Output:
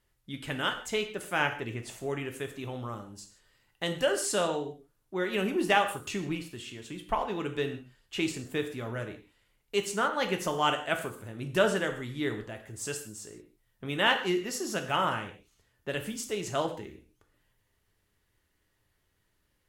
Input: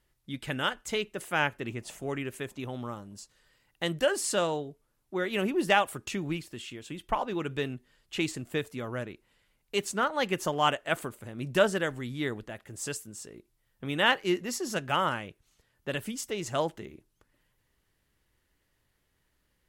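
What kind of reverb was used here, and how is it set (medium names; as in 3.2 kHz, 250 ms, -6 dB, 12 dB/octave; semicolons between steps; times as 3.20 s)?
gated-style reverb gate 190 ms falling, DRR 5 dB; trim -1.5 dB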